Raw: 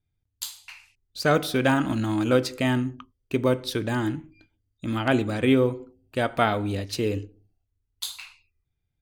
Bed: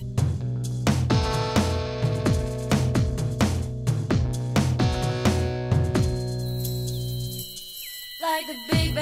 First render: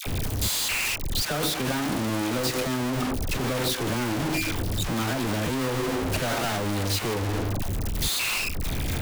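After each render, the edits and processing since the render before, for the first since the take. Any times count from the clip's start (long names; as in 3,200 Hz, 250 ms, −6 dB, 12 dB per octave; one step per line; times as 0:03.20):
sign of each sample alone
all-pass dispersion lows, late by 66 ms, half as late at 860 Hz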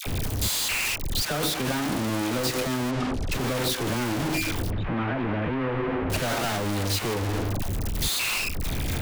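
0:02.91–0:03.32: high-frequency loss of the air 75 metres
0:04.70–0:06.10: low-pass filter 2,500 Hz 24 dB per octave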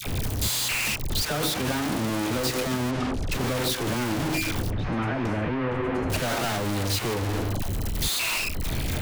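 mix in bed −16.5 dB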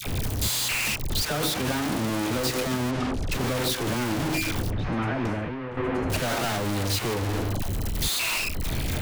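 0:05.27–0:05.77: fade out quadratic, to −8 dB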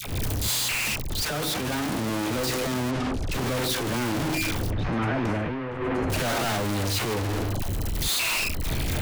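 transient designer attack −11 dB, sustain +5 dB
speech leveller 2 s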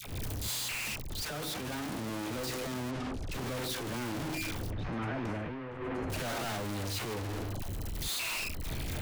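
level −9.5 dB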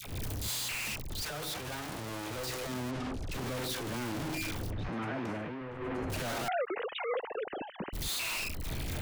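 0:01.29–0:02.69: parametric band 240 Hz −9 dB
0:04.89–0:05.61: high-pass filter 130 Hz
0:06.48–0:07.93: three sine waves on the formant tracks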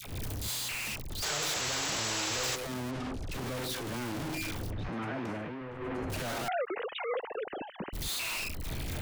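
0:01.22–0:02.56: sound drawn into the spectrogram noise 350–8,000 Hz −34 dBFS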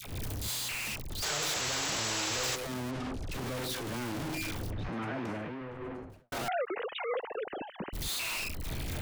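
0:05.62–0:06.32: fade out and dull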